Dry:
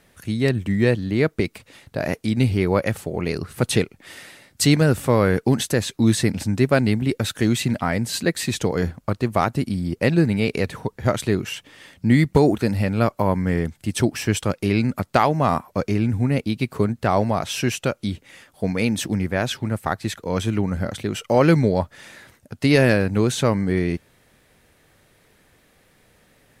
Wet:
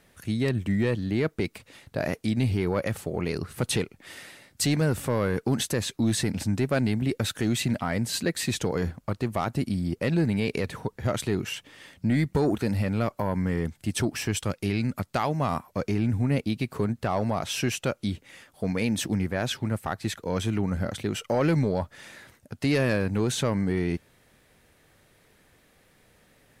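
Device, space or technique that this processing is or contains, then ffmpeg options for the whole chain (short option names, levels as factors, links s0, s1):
soft clipper into limiter: -filter_complex "[0:a]asettb=1/sr,asplit=3[s0][s1][s2];[s0]atrim=end=14.314[s3];[s1]atrim=start=14.31:end=15.77,asetpts=PTS-STARTPTS,afade=t=in:d=0.004:c=qsin,afade=t=out:st=1.456:d=0.004:c=qsin,equalizer=f=530:w=0.32:g=-4[s4];[s2]atrim=start=15.766[s5];[s3][s4]acrossfade=d=0.004:c1=hsin:c2=qsin[s6];[s6][s5]acrossfade=d=0.004:c1=qsin:c2=hsin,asoftclip=type=tanh:threshold=0.376,alimiter=limit=0.211:level=0:latency=1:release=48,volume=0.708"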